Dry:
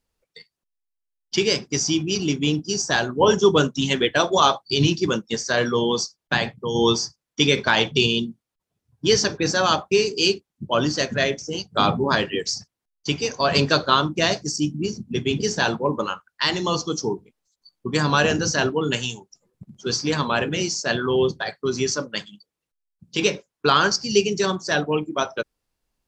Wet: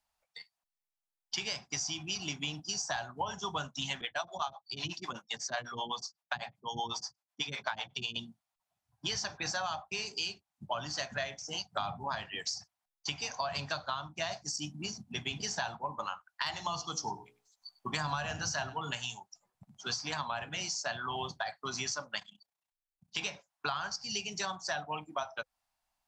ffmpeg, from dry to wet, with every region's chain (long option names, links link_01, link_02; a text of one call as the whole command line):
ffmpeg -i in.wav -filter_complex "[0:a]asettb=1/sr,asplit=3[link_01][link_02][link_03];[link_01]atrim=end=4.014[link_04];[link_02]atrim=start=4.01:end=8.16,asetpts=PTS-STARTPTS,afade=type=in:duration=0.004:curve=qsin,afade=type=out:start_time=4.146:duration=0.004:curve=qsin,highpass=96,acrossover=split=400[link_05][link_06];[link_05]aeval=exprs='val(0)*(1-1/2+1/2*cos(2*PI*8*n/s))':channel_layout=same[link_07];[link_06]aeval=exprs='val(0)*(1-1/2-1/2*cos(2*PI*8*n/s))':channel_layout=same[link_08];[link_07][link_08]amix=inputs=2:normalize=0[link_09];[link_03]atrim=start=8.156[link_10];[link_04][link_09]acrossfade=duration=0.004:curve1=hsin:curve2=qsin[link_11];[link_11][link_10]acrossfade=duration=0.004:curve1=qsin:curve2=hsin,asettb=1/sr,asplit=3[link_12][link_13][link_14];[link_12]atrim=end=16.464[link_15];[link_13]atrim=start=16.46:end=18.91,asetpts=PTS-STARTPTS,afade=type=in:duration=0.004:curve=qsin,afade=type=out:start_time=2.446:duration=0.004:curve=qsin,bandreject=frequency=60:width_type=h:width=6,bandreject=frequency=120:width_type=h:width=6,bandreject=frequency=180:width_type=h:width=6,bandreject=frequency=240:width_type=h:width=6,bandreject=frequency=300:width_type=h:width=6,bandreject=frequency=360:width_type=h:width=6,bandreject=frequency=420:width_type=h:width=6,bandreject=frequency=480:width_type=h:width=6,acontrast=26,aecho=1:1:98:0.1,atrim=end_sample=108045[link_16];[link_14]atrim=start=18.906[link_17];[link_15][link_16]acrossfade=duration=0.004:curve1=hsin:curve2=qsin[link_18];[link_18][link_17]acrossfade=duration=0.004:curve1=qsin:curve2=hsin,asettb=1/sr,asplit=3[link_19][link_20][link_21];[link_19]atrim=end=22.194[link_22];[link_20]atrim=start=22.19:end=23.17,asetpts=PTS-STARTPTS,afade=type=in:duration=0.004:curve=qsin,afade=type=out:start_time=0.976:duration=0.004:curve=qsin,bandreject=frequency=1300:width=17,tremolo=f=30:d=0.824[link_23];[link_21]atrim=start=23.166[link_24];[link_22][link_23]acrossfade=duration=0.004:curve1=hsin:curve2=qsin[link_25];[link_25][link_24]acrossfade=duration=0.004:curve1=qsin:curve2=hsin,lowshelf=frequency=550:width_type=q:width=3:gain=-10,bandreject=frequency=510:width=12,acrossover=split=130[link_26][link_27];[link_27]acompressor=threshold=-29dB:ratio=10[link_28];[link_26][link_28]amix=inputs=2:normalize=0,volume=-3.5dB" out.wav